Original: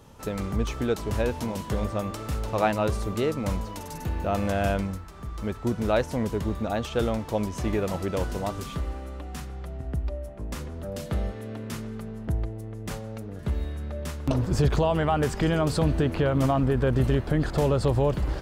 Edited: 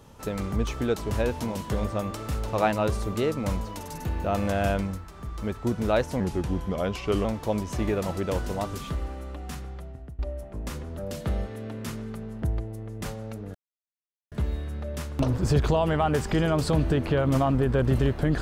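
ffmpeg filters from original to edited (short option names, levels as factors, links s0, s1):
-filter_complex "[0:a]asplit=5[s0][s1][s2][s3][s4];[s0]atrim=end=6.204[s5];[s1]atrim=start=6.2:end=7.1,asetpts=PTS-STARTPTS,asetrate=37926,aresample=44100,atrim=end_sample=46151,asetpts=PTS-STARTPTS[s6];[s2]atrim=start=7.096:end=10.04,asetpts=PTS-STARTPTS,afade=t=out:st=2.404:d=0.54:silence=0.105925[s7];[s3]atrim=start=10.04:end=13.4,asetpts=PTS-STARTPTS,afade=t=in:d=0.004:c=hsin:silence=0.105925,afade=t=out:st=3.356:d=0.004:c=hsin,apad=pad_dur=0.77[s8];[s4]atrim=start=13.4,asetpts=PTS-STARTPTS,afade=t=in:d=0.004:c=hsin[s9];[s5][s6]acrossfade=d=0.004:c1=hsin:c2=hsin[s10];[s7][s8][s9]concat=n=3:v=0:a=1[s11];[s10][s11]acrossfade=d=0.004:c1=hsin:c2=hsin"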